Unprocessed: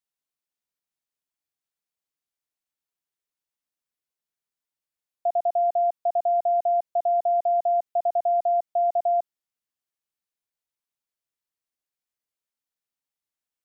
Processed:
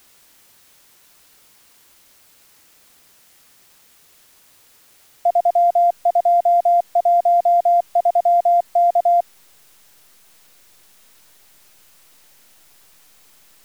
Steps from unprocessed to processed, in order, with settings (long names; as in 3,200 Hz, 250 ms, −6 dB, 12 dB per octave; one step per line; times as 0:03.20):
slack as between gear wheels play −50 dBFS
bit-depth reduction 10 bits, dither triangular
level +7.5 dB